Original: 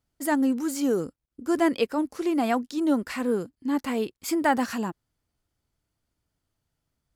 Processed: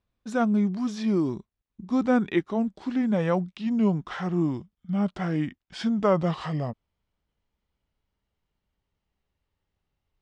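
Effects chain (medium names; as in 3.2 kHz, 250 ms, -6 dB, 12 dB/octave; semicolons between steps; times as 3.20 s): gliding tape speed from 79% -> 61%; low-pass 3.6 kHz 12 dB/octave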